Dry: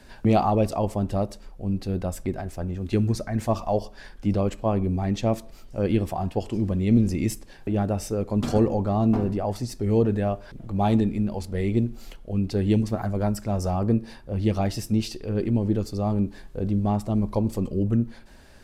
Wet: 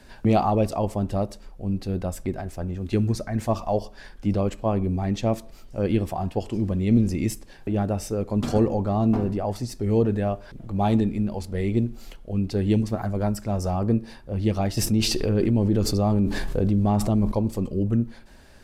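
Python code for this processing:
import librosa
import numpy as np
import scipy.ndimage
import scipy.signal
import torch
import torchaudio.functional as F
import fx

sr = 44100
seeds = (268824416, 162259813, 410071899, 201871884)

y = fx.env_flatten(x, sr, amount_pct=70, at=(14.77, 17.32))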